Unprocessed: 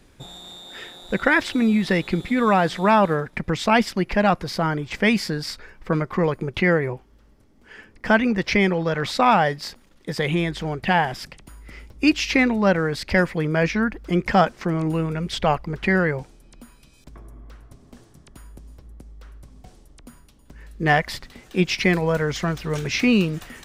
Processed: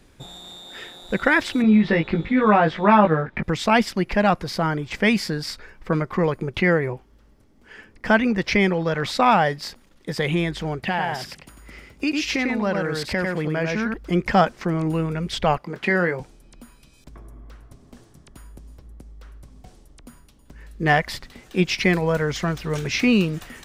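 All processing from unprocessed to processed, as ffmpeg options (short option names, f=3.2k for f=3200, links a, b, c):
-filter_complex "[0:a]asettb=1/sr,asplit=3[a][b][c];[a]atrim=end=1.624[d];[b]atrim=start=1.62:end=3.43,asetpts=PTS-STARTPTS,afade=t=in:d=0.004:c=qsin,afade=t=out:st=1.806:d=0.004:c=qsin,lowpass=2.8k,asplit=2[e][f];[f]adelay=19,volume=-3dB[g];[e][g]amix=inputs=2:normalize=0,atrim=end_sample=79821[h];[c]atrim=start=3.426[i];[d][h]acrossfade=d=0.004:c1=hsin:c2=qsin[j];[j][i]acrossfade=d=0.004:c1=qsin:c2=hsin,asettb=1/sr,asplit=3[k][l][m];[k]atrim=end=10.804[n];[l]atrim=start=10.8:end=13.94,asetpts=PTS-STARTPTS,afade=t=in:d=0.004:c=qsin,afade=t=out:st=3.136:d=0.004:c=qsin,highpass=f=99:p=1,aecho=1:1:98:0.596,atrim=end_sample=138474,acompressor=threshold=-21dB:ratio=2.5:attack=3.2:release=140:knee=1:detection=peak[o];[m]atrim=start=13.936[p];[n][o]acrossfade=d=0.004:c1=hsin:c2=qsin[q];[q][p]acrossfade=d=0.004:c1=qsin:c2=hsin,asettb=1/sr,asplit=3[r][s][t];[r]atrim=end=15.584[u];[s]atrim=start=15.58:end=16.2,asetpts=PTS-STARTPTS,afade=t=in:d=0.004:c=qsin,afade=t=out:st=0.616:d=0.004:c=qsin,highpass=190,asplit=2[v][w];[w]adelay=23,volume=-10dB[x];[v][x]amix=inputs=2:normalize=0,atrim=end_sample=27342[y];[t]atrim=start=16.196[z];[u][y]acrossfade=d=0.004:c1=hsin:c2=qsin[aa];[aa][z]acrossfade=d=0.004:c1=qsin:c2=hsin"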